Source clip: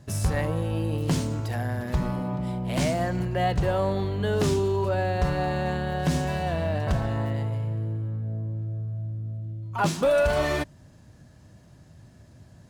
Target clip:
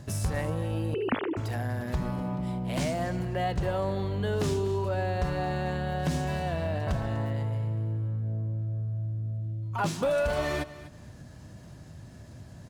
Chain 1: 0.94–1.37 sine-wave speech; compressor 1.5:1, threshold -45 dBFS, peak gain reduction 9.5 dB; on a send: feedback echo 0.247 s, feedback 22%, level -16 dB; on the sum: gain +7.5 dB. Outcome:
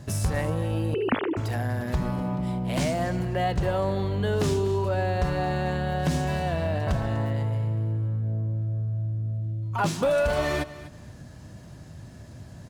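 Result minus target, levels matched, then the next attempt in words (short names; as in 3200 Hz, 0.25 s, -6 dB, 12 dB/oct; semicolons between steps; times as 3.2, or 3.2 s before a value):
compressor: peak gain reduction -3.5 dB
0.94–1.37 sine-wave speech; compressor 1.5:1, threshold -55.5 dBFS, peak gain reduction 13 dB; on a send: feedback echo 0.247 s, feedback 22%, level -16 dB; on the sum: gain +7.5 dB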